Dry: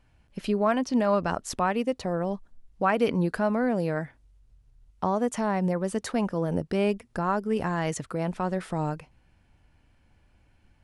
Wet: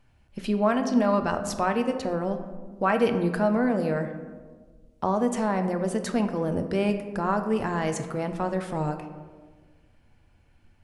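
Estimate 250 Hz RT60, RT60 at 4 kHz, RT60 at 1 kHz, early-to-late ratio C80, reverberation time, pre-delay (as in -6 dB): 1.8 s, 0.70 s, 1.3 s, 10.5 dB, 1.5 s, 3 ms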